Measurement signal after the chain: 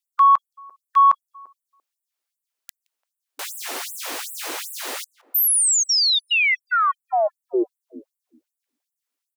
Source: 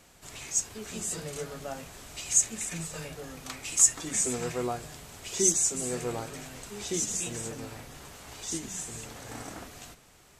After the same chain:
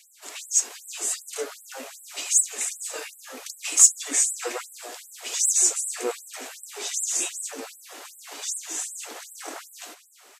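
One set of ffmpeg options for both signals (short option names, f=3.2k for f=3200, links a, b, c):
-filter_complex "[0:a]acontrast=33,asplit=2[a][b];[b]adelay=171,lowpass=f=1.2k:p=1,volume=-16dB,asplit=2[c][d];[d]adelay=171,lowpass=f=1.2k:p=1,volume=0.44,asplit=2[e][f];[f]adelay=171,lowpass=f=1.2k:p=1,volume=0.44,asplit=2[g][h];[h]adelay=171,lowpass=f=1.2k:p=1,volume=0.44[i];[a][c][e][g][i]amix=inputs=5:normalize=0,afftfilt=real='re*gte(b*sr/1024,240*pow(7700/240,0.5+0.5*sin(2*PI*2.6*pts/sr)))':imag='im*gte(b*sr/1024,240*pow(7700/240,0.5+0.5*sin(2*PI*2.6*pts/sr)))':win_size=1024:overlap=0.75,volume=1.5dB"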